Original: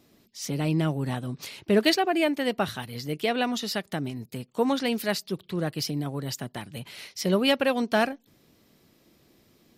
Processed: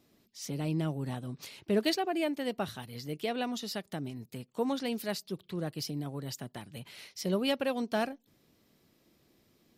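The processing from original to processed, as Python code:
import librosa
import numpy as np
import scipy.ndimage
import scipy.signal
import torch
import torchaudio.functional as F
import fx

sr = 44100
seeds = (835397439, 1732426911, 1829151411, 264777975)

y = fx.dynamic_eq(x, sr, hz=1800.0, q=0.82, threshold_db=-42.0, ratio=4.0, max_db=-4)
y = F.gain(torch.from_numpy(y), -6.5).numpy()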